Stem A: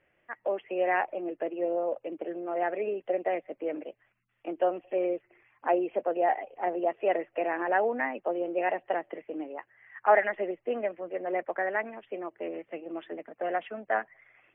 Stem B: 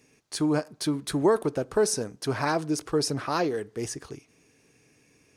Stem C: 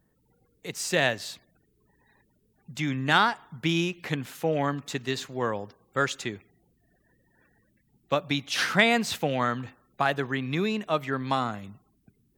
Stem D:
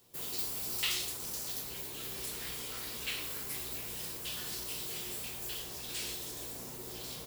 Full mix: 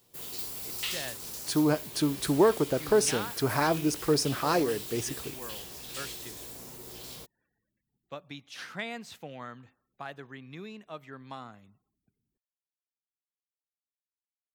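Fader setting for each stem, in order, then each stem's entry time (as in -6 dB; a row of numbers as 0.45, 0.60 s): off, 0.0 dB, -16.0 dB, -1.0 dB; off, 1.15 s, 0.00 s, 0.00 s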